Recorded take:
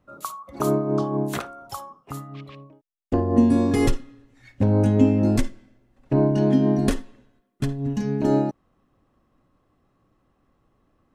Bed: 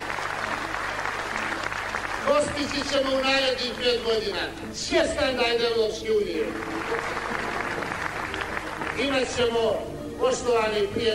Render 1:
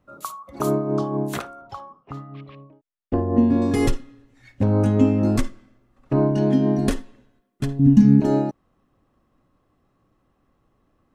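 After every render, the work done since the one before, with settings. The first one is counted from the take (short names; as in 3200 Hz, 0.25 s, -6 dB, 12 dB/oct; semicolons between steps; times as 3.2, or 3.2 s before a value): 1.61–3.62 air absorption 220 m; 4.64–6.34 bell 1200 Hz +12 dB 0.24 oct; 7.79–8.2 resonant low shelf 340 Hz +9 dB, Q 3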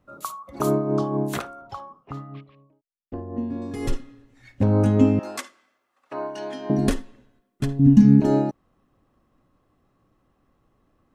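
2.38–3.92 dip -11.5 dB, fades 0.36 s exponential; 5.19–6.7 HPF 820 Hz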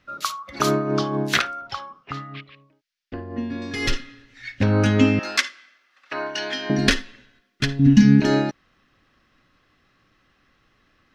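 band shelf 2900 Hz +16 dB 2.4 oct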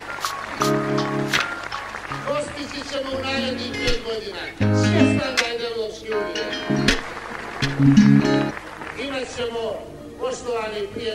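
add bed -3 dB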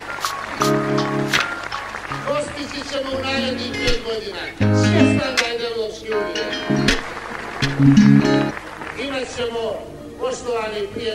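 gain +2.5 dB; limiter -2 dBFS, peak gain reduction 2 dB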